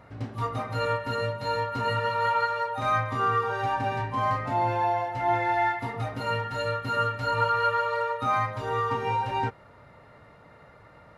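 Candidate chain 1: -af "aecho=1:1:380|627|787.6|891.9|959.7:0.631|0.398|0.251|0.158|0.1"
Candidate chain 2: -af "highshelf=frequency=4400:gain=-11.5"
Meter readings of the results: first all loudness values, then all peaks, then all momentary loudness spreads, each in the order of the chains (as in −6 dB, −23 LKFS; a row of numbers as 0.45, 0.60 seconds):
−25.5, −28.0 LKFS; −11.0, −13.0 dBFS; 7, 5 LU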